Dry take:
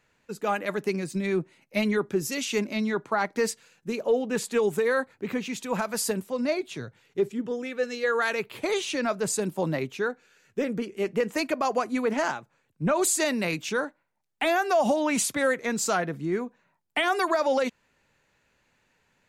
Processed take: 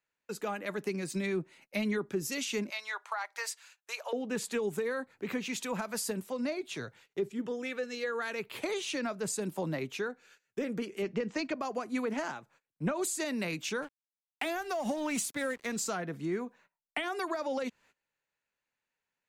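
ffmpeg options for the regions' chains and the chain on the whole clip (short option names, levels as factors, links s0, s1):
-filter_complex "[0:a]asettb=1/sr,asplit=3[s0][s1][s2];[s0]atrim=end=2.704[s3];[s1]atrim=start=2.7:end=4.13,asetpts=PTS-STARTPTS,afade=t=in:d=0.004:c=qsin,afade=t=out:st=1.426:d=0.004:c=qsin,highpass=f=750:w=0.5412,highpass=f=750:w=1.3066,deesser=0.5[s4];[s2]atrim=start=4.126[s5];[s3][s4]acrossfade=d=0.004:c1=hsin:c2=qsin[s6];[s6][s5]acrossfade=d=0.004:c1=qsin:c2=hsin,asettb=1/sr,asplit=3[s7][s8][s9];[s7]atrim=end=11.024[s10];[s8]atrim=start=11.02:end=11.56,asetpts=PTS-STARTPTS,afade=t=in:d=0.004:c=qsin,afade=t=out:st=0.536:d=0.004:c=qsin,lowpass=f=5900:w=0.5412,lowpass=f=5900:w=1.3066,bass=f=250:g=4,treble=f=4000:g=3[s11];[s9]atrim=start=11.556[s12];[s10][s11]acrossfade=d=0.004:c1=hsin:c2=qsin[s13];[s13][s12]acrossfade=d=0.004:c1=qsin:c2=hsin,asettb=1/sr,asplit=3[s14][s15][s16];[s14]atrim=end=13.824[s17];[s15]atrim=start=13.82:end=15.76,asetpts=PTS-STARTPTS,afade=t=in:d=0.004:c=qsin,afade=t=out:st=1.936:d=0.004:c=qsin,highshelf=f=6600:g=6,aeval=exprs='sgn(val(0))*max(abs(val(0))-0.00944,0)':c=same[s18];[s16]atrim=start=15.756[s19];[s17][s18]acrossfade=d=0.004:c1=hsin:c2=qsin[s20];[s20][s19]acrossfade=d=0.004:c1=qsin:c2=hsin,agate=range=0.0891:threshold=0.00158:ratio=16:detection=peak,acrossover=split=320[s21][s22];[s22]acompressor=threshold=0.0158:ratio=5[s23];[s21][s23]amix=inputs=2:normalize=0,lowshelf=f=330:g=-10.5,volume=1.33"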